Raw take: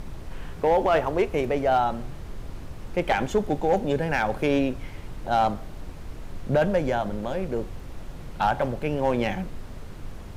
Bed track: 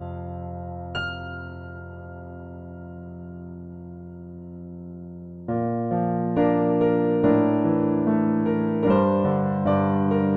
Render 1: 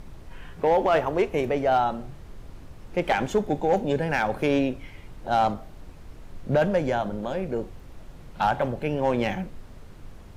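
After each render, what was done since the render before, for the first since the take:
noise reduction from a noise print 6 dB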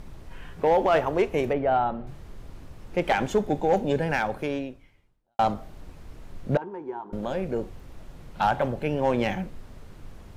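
0:01.53–0:02.07: high-frequency loss of the air 370 metres
0:04.10–0:05.39: fade out quadratic
0:06.57–0:07.13: pair of resonant band-passes 590 Hz, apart 1.3 octaves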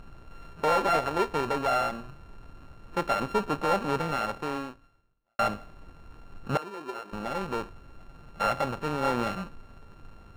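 samples sorted by size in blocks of 32 samples
mid-hump overdrive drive 4 dB, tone 1,200 Hz, clips at −12.5 dBFS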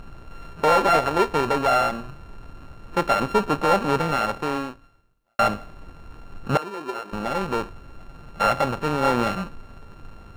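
level +6.5 dB

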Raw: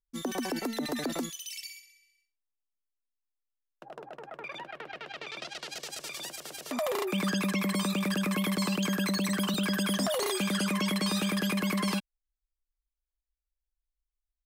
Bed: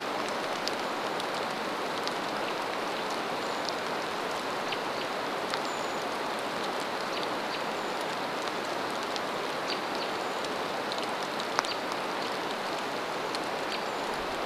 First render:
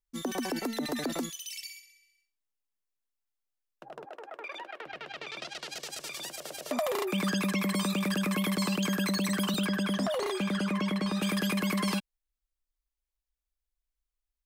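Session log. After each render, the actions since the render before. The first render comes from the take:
0:04.05–0:04.86: high-pass filter 310 Hz 24 dB per octave
0:06.34–0:06.80: parametric band 590 Hz +8 dB 0.53 octaves
0:09.65–0:11.21: low-pass filter 3,100 Hz → 1,700 Hz 6 dB per octave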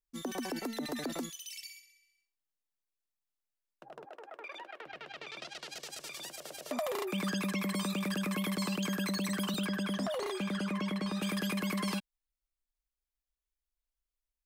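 level −4.5 dB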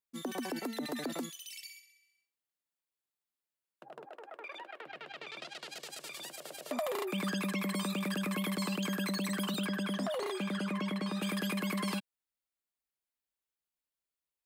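high-pass filter 130 Hz
parametric band 5,800 Hz −5 dB 0.38 octaves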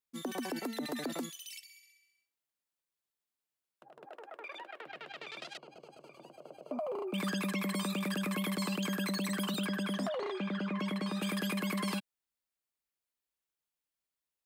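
0:01.59–0:04.03: downward compressor 2 to 1, threshold −57 dBFS
0:05.57–0:07.14: moving average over 24 samples
0:10.09–0:10.79: high-frequency loss of the air 160 metres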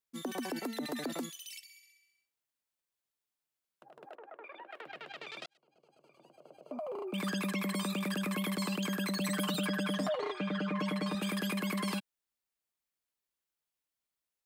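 0:04.15–0:04.71: high-frequency loss of the air 470 metres
0:05.46–0:07.37: fade in linear
0:09.20–0:11.15: comb filter 6.6 ms, depth 77%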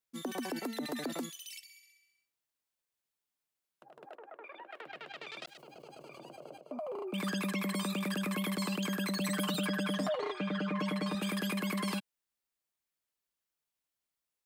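0:05.44–0:06.58: envelope flattener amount 70%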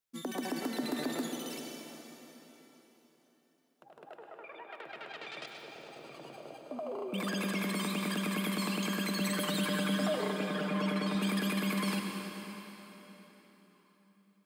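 dense smooth reverb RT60 4.1 s, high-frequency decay 0.85×, pre-delay 80 ms, DRR 2.5 dB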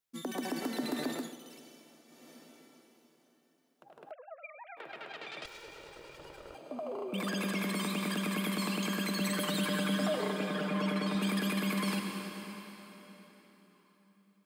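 0:01.09–0:02.34: duck −11 dB, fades 0.27 s
0:04.11–0:04.77: three sine waves on the formant tracks
0:05.45–0:06.55: lower of the sound and its delayed copy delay 2.1 ms

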